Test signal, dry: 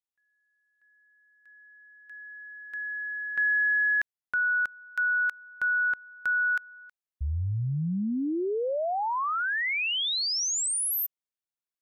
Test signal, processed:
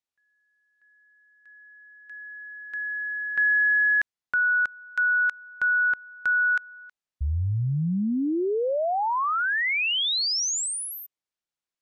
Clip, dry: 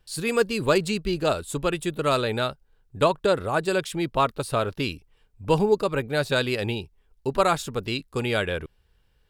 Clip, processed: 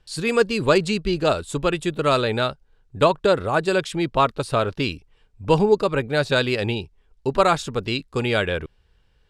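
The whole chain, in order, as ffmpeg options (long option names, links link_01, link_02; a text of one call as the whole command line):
ffmpeg -i in.wav -af "lowpass=7500,volume=3.5dB" out.wav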